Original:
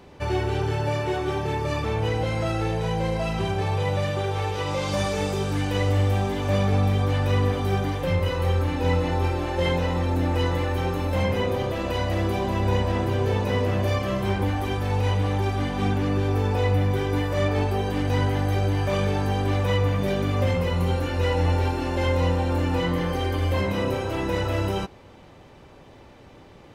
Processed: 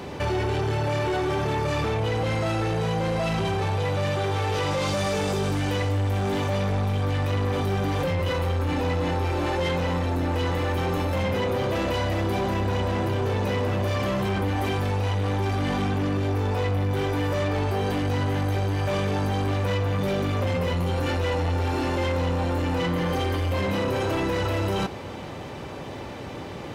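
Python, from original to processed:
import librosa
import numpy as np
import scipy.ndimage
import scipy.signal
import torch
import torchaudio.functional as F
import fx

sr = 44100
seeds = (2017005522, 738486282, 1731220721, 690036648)

p1 = scipy.signal.sosfilt(scipy.signal.butter(2, 71.0, 'highpass', fs=sr, output='sos'), x)
p2 = fx.over_compress(p1, sr, threshold_db=-33.0, ratio=-1.0)
p3 = p1 + F.gain(torch.from_numpy(p2), 2.5).numpy()
y = 10.0 ** (-20.5 / 20.0) * np.tanh(p3 / 10.0 ** (-20.5 / 20.0))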